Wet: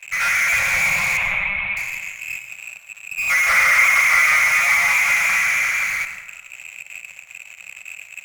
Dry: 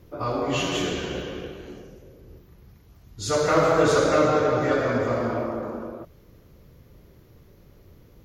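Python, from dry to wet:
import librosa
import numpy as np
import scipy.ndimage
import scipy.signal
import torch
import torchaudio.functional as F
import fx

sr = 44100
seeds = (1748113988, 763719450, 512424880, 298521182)

p1 = fx.env_lowpass_down(x, sr, base_hz=1800.0, full_db=-20.0)
p2 = fx.freq_invert(p1, sr, carrier_hz=2600)
p3 = fx.fuzz(p2, sr, gain_db=41.0, gate_db=-48.0)
p4 = p2 + (p3 * 10.0 ** (-8.0 / 20.0))
p5 = fx.lpc_monotone(p4, sr, seeds[0], pitch_hz=200.0, order=10, at=(1.17, 1.77))
p6 = scipy.signal.sosfilt(scipy.signal.cheby1(5, 1.0, [200.0, 510.0], 'bandstop', fs=sr, output='sos'), p5)
y = fx.rev_plate(p6, sr, seeds[1], rt60_s=1.2, hf_ratio=0.5, predelay_ms=85, drr_db=8.0)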